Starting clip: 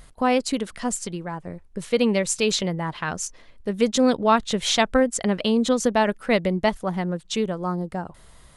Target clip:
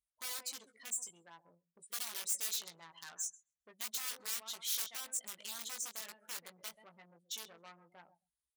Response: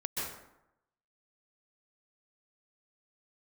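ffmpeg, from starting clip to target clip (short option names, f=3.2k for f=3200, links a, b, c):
-filter_complex "[0:a]asettb=1/sr,asplit=3[a][b][c];[a]atrim=end=4.854[d];[b]atrim=start=4.85:end=7.16,asetpts=PTS-STARTPTS,afade=t=in:d=0.004:c=qsin,afade=t=out:st=2.306:d=0.004:c=qsin,equalizer=f=1.1k:w=0.43:g=-5[e];[c]atrim=start=7.156[f];[d][e]acrossfade=d=0.004:c1=hsin:c2=qsin[g];[g][f]acrossfade=d=0.004:c1=qsin:c2=hsin,aecho=1:1:132|264|396:0.2|0.0658|0.0217,aeval=exprs='(mod(5.62*val(0)+1,2)-1)/5.62':c=same,afftdn=nr=34:nf=-34,asplit=2[h][i];[i]adelay=18,volume=-6dB[j];[h][j]amix=inputs=2:normalize=0,asoftclip=type=tanh:threshold=-25dB,highpass=f=41:p=1,aderivative,volume=-5.5dB"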